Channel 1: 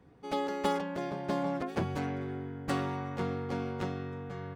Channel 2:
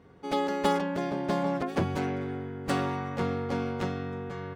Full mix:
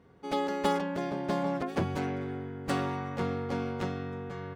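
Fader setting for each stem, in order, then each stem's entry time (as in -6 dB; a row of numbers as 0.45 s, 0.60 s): -12.0 dB, -4.0 dB; 0.00 s, 0.00 s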